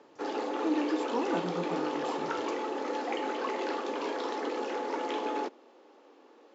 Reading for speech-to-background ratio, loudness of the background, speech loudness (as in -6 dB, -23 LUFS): -0.5 dB, -34.0 LUFS, -34.5 LUFS